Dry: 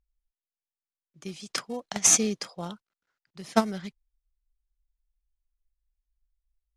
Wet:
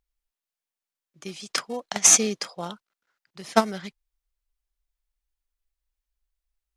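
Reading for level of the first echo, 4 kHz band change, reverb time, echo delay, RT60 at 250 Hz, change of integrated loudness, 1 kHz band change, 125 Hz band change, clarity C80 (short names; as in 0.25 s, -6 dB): none, +4.5 dB, none, none, none, +4.0 dB, +4.5 dB, -0.5 dB, none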